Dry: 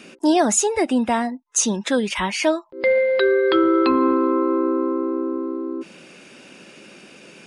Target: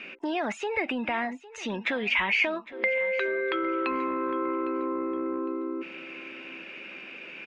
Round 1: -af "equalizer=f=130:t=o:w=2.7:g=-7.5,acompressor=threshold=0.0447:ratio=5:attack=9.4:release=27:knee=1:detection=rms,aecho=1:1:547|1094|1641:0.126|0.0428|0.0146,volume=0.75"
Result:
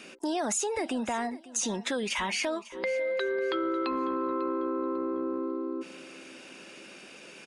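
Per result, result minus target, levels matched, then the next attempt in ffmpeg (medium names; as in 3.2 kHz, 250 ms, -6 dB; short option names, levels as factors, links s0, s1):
echo 260 ms early; 2 kHz band -6.0 dB
-af "equalizer=f=130:t=o:w=2.7:g=-7.5,acompressor=threshold=0.0447:ratio=5:attack=9.4:release=27:knee=1:detection=rms,aecho=1:1:807|1614|2421:0.126|0.0428|0.0146,volume=0.75"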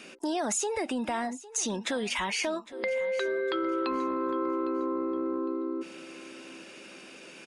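2 kHz band -6.0 dB
-af "equalizer=f=130:t=o:w=2.7:g=-7.5,acompressor=threshold=0.0447:ratio=5:attack=9.4:release=27:knee=1:detection=rms,lowpass=f=2400:t=q:w=3.5,aecho=1:1:807|1614|2421:0.126|0.0428|0.0146,volume=0.75"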